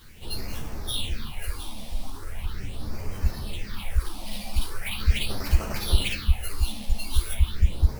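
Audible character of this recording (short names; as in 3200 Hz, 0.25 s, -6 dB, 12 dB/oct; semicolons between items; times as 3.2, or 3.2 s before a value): aliases and images of a low sample rate 7000 Hz, jitter 0%; phasing stages 6, 0.4 Hz, lowest notch 100–3600 Hz; a quantiser's noise floor 10-bit, dither triangular; a shimmering, thickened sound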